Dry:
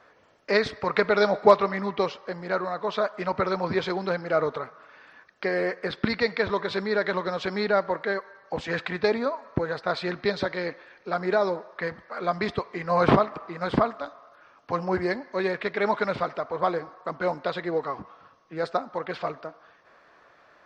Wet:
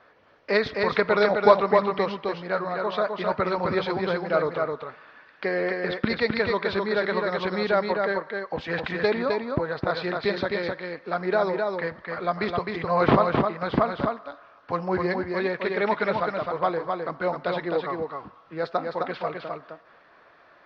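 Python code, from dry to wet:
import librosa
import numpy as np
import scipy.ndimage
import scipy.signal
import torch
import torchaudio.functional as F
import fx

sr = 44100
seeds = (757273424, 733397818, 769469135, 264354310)

p1 = scipy.signal.sosfilt(scipy.signal.butter(4, 4800.0, 'lowpass', fs=sr, output='sos'), x)
y = p1 + fx.echo_single(p1, sr, ms=260, db=-4.0, dry=0)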